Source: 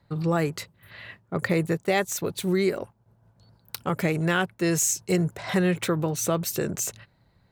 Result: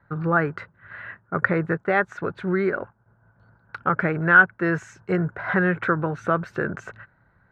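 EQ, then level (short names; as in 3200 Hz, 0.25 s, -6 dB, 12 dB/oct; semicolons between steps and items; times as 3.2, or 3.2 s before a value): synth low-pass 1500 Hz, resonance Q 6.2; 0.0 dB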